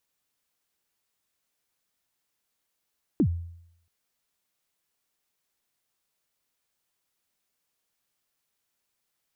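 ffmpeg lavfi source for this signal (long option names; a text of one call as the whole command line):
ffmpeg -f lavfi -i "aevalsrc='0.158*pow(10,-3*t/0.73)*sin(2*PI*(360*0.075/log(85/360)*(exp(log(85/360)*min(t,0.075)/0.075)-1)+85*max(t-0.075,0)))':duration=0.68:sample_rate=44100" out.wav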